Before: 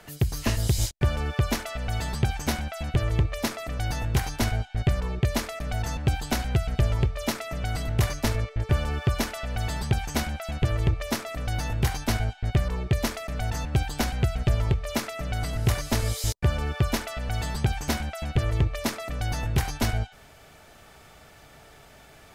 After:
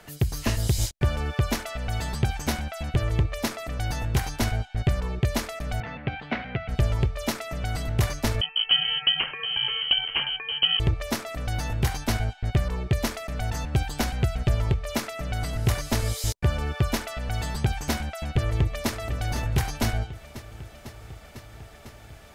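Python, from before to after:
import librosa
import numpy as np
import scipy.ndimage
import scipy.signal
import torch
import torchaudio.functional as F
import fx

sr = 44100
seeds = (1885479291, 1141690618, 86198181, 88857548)

y = fx.cabinet(x, sr, low_hz=160.0, low_slope=12, high_hz=3000.0, hz=(350.0, 910.0, 2100.0), db=(-6, -4, 6), at=(5.8, 6.69))
y = fx.freq_invert(y, sr, carrier_hz=3100, at=(8.41, 10.8))
y = fx.echo_throw(y, sr, start_s=18.01, length_s=0.91, ms=500, feedback_pct=80, wet_db=-12.0)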